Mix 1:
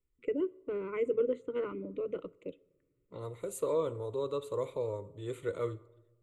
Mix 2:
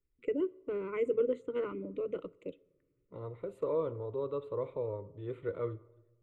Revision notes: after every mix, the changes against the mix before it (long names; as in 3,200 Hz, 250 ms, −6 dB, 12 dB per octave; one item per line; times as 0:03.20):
second voice: add high-frequency loss of the air 490 metres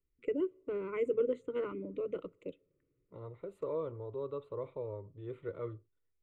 first voice: send −7.0 dB
second voice: send off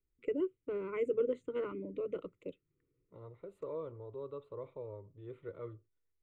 second voice −4.5 dB
reverb: off